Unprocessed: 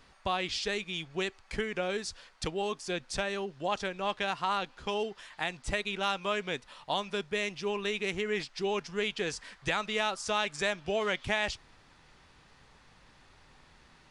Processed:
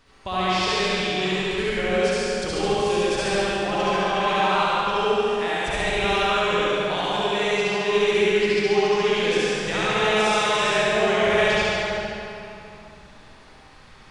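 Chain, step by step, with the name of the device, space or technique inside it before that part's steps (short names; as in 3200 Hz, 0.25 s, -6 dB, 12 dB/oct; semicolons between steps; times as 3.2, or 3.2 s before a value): tunnel (flutter echo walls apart 12 m, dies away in 1.2 s; reverb RT60 3.0 s, pre-delay 53 ms, DRR -8 dB)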